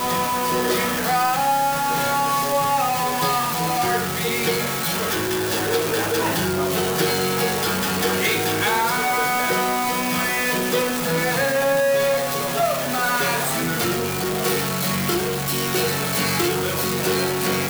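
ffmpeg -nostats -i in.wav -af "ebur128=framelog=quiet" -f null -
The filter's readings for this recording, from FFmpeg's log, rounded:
Integrated loudness:
  I:         -20.5 LUFS
  Threshold: -30.5 LUFS
Loudness range:
  LRA:         1.3 LU
  Threshold: -40.5 LUFS
  LRA low:   -21.2 LUFS
  LRA high:  -19.9 LUFS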